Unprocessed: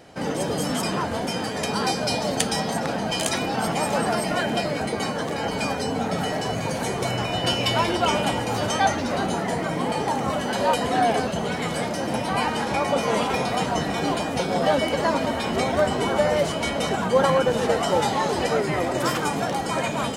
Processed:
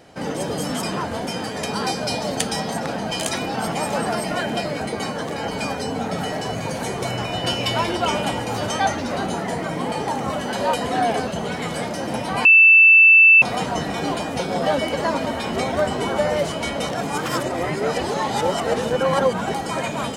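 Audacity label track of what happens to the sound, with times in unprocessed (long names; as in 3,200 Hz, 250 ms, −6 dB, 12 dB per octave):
12.450000	13.420000	beep over 2,650 Hz −7 dBFS
16.890000	19.540000	reverse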